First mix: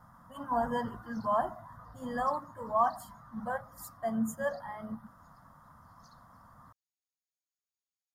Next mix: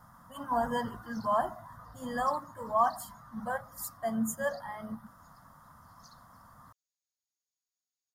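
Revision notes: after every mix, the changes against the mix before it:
master: add high-shelf EQ 2,700 Hz +8 dB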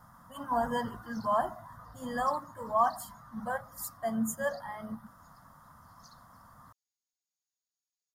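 nothing changed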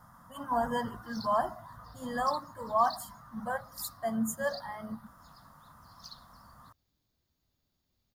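background: remove resonant band-pass 6,800 Hz, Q 4.1

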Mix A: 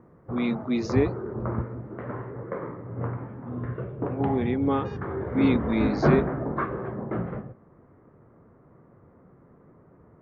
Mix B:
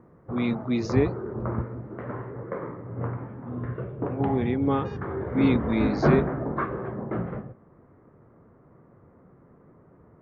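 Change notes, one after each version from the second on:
speech: remove linear-phase brick-wall high-pass 160 Hz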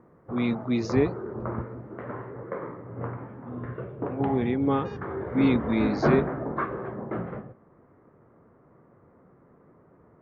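background: add low-shelf EQ 190 Hz −6.5 dB

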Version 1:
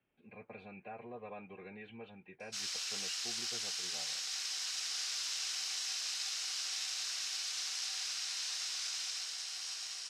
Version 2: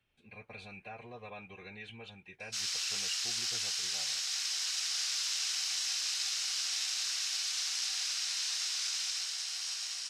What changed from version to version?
speech: remove three-way crossover with the lows and the highs turned down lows −17 dB, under 160 Hz, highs −23 dB, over 3,000 Hz
master: add tilt shelving filter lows −4.5 dB, about 750 Hz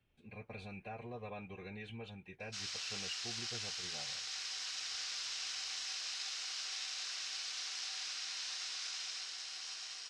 background: add high-frequency loss of the air 75 metres
master: add tilt shelving filter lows +4.5 dB, about 750 Hz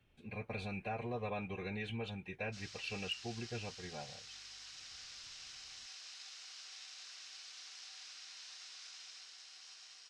speech +6.0 dB
background −10.0 dB

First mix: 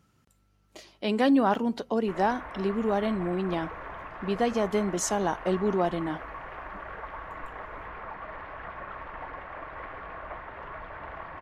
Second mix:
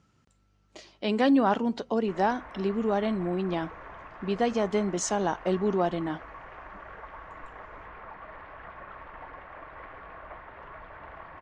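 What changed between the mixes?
background −4.5 dB
master: add low-pass filter 7,800 Hz 24 dB per octave

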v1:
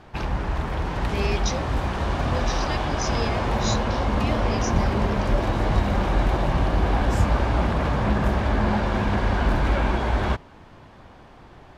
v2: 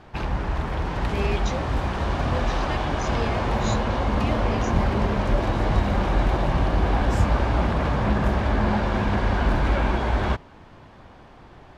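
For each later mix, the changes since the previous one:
speech: remove low-pass with resonance 5,500 Hz, resonance Q 4.5
background: add high-shelf EQ 10,000 Hz −6 dB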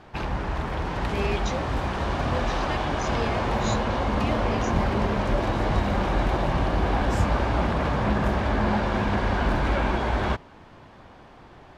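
master: add low-shelf EQ 120 Hz −4.5 dB

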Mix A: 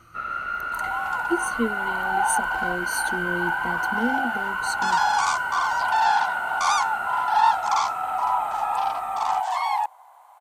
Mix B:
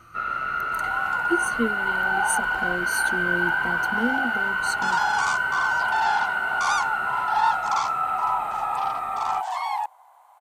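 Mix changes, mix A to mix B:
second sound −3.0 dB
reverb: on, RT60 0.65 s

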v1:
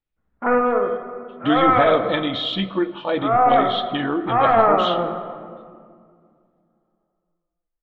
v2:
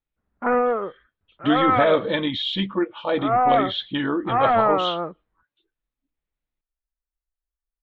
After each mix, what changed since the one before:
reverb: off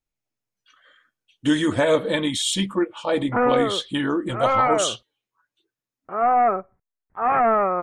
background: entry +2.90 s
master: remove Chebyshev low-pass filter 3,800 Hz, order 4

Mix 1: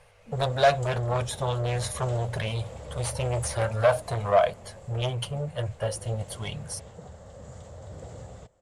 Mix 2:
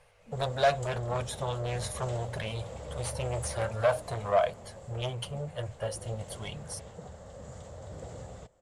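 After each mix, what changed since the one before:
speech −4.5 dB
master: add parametric band 95 Hz −3 dB 0.97 octaves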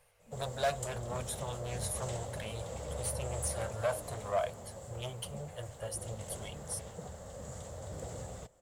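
speech −7.5 dB
master: remove high-frequency loss of the air 68 metres

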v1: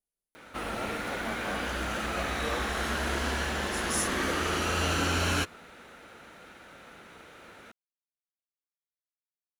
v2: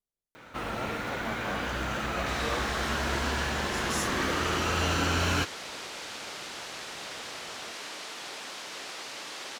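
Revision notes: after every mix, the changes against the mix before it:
second sound: unmuted
master: add thirty-one-band graphic EQ 125 Hz +11 dB, 1,000 Hz +3 dB, 10,000 Hz −10 dB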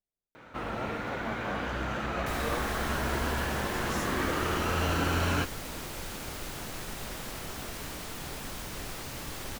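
second sound: remove band-pass filter 420–4,900 Hz
master: add high-shelf EQ 3,000 Hz −9.5 dB

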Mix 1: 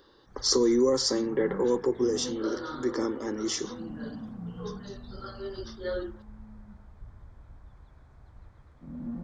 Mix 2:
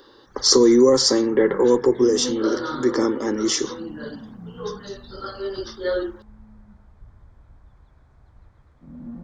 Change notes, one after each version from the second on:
speech +9.0 dB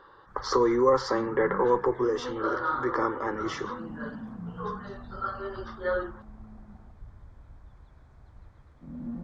speech: add drawn EQ curve 110 Hz 0 dB, 190 Hz −18 dB, 1,200 Hz +5 dB, 7,500 Hz −27 dB
second sound: entry +1.30 s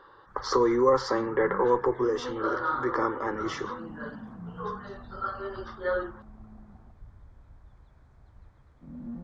first sound: send −10.0 dB

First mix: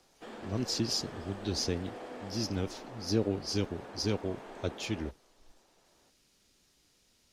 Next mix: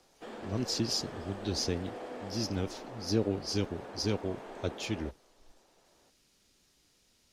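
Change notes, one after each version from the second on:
background: add parametric band 520 Hz +2.5 dB 1.4 octaves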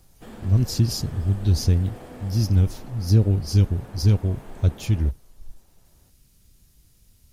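background: add parametric band 520 Hz −2.5 dB 1.4 octaves
master: remove three-way crossover with the lows and the highs turned down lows −22 dB, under 260 Hz, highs −18 dB, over 7,100 Hz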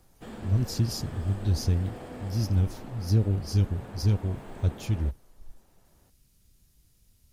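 speech −6.0 dB

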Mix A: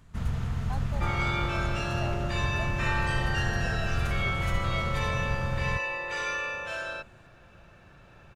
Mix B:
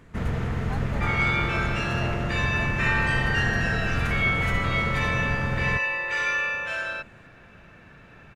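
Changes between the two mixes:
first sound: add parametric band 410 Hz +13.5 dB 2 octaves
master: add parametric band 2,000 Hz +9 dB 1 octave

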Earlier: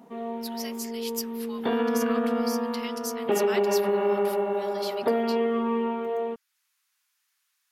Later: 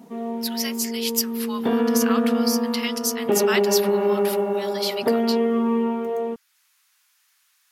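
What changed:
speech +10.5 dB
background: add parametric band 160 Hz +7.5 dB 2.7 octaves

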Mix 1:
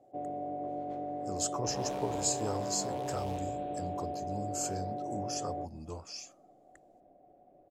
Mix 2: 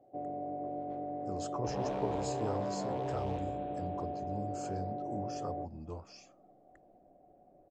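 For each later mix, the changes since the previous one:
second sound +4.0 dB
master: add head-to-tape spacing loss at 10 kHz 23 dB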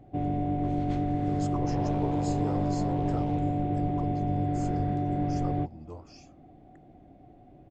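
first sound: remove resonant band-pass 570 Hz, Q 3.2

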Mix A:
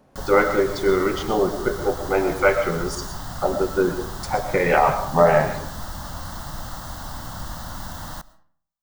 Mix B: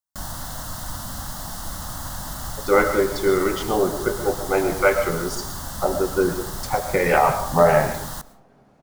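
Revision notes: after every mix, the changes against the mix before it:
speech: entry +2.40 s
background: add parametric band 11,000 Hz +10 dB 1.3 octaves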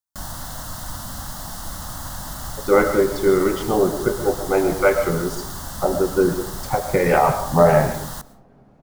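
speech: add spectral tilt −2 dB per octave

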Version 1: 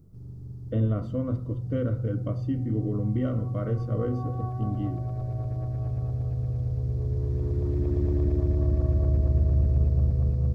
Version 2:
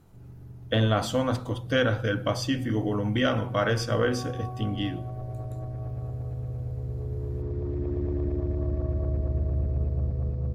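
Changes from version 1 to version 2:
speech: remove moving average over 53 samples
background: add bass and treble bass −5 dB, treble −12 dB

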